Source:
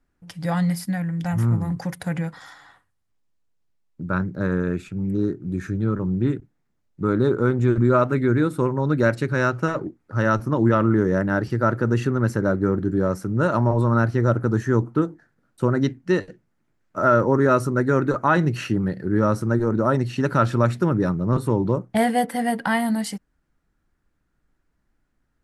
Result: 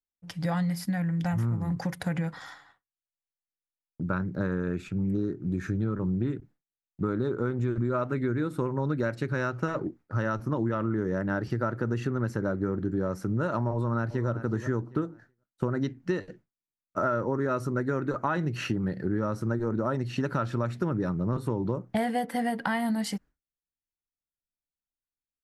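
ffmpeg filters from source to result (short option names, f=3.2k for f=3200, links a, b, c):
-filter_complex "[0:a]asplit=2[a][b];[b]afade=t=in:st=13.72:d=0.01,afade=t=out:st=14.29:d=0.01,aecho=0:1:380|760|1140:0.188365|0.0470912|0.0117728[c];[a][c]amix=inputs=2:normalize=0,agate=range=-33dB:threshold=-42dB:ratio=3:detection=peak,equalizer=f=9.4k:w=1.5:g=-5.5,acompressor=threshold=-25dB:ratio=6"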